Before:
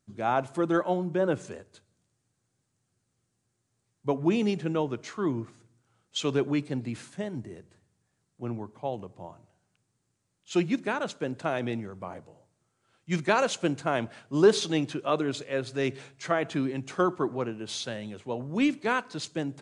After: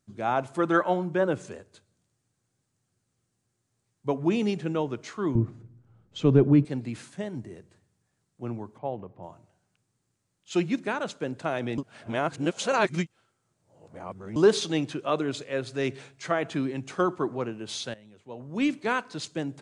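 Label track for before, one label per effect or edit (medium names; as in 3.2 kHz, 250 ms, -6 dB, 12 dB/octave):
0.460000	1.240000	dynamic bell 1.5 kHz, up to +7 dB, over -42 dBFS, Q 0.7
5.350000	6.650000	tilt EQ -4.5 dB/octave
8.780000	9.230000	low-pass 2.1 kHz
11.780000	14.360000	reverse
17.940000	18.690000	fade in quadratic, from -15.5 dB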